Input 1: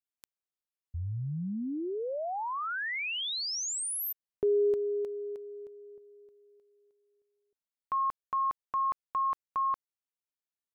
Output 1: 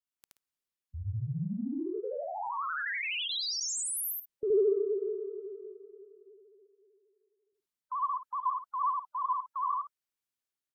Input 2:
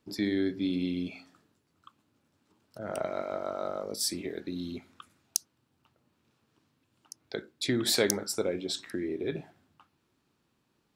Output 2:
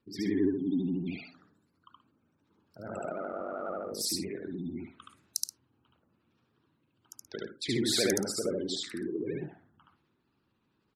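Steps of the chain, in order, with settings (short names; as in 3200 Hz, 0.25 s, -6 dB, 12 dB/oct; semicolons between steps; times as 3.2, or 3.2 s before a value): spectral gate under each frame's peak -20 dB strong; bell 650 Hz -4 dB 0.78 oct; transient shaper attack -1 dB, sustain +3 dB; in parallel at -9.5 dB: soft clip -17.5 dBFS; on the sum: wow and flutter 12 Hz 130 cents; on a send: loudspeakers at several distances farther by 25 m 0 dB, 44 m -12 dB; on the sum: gain -5.5 dB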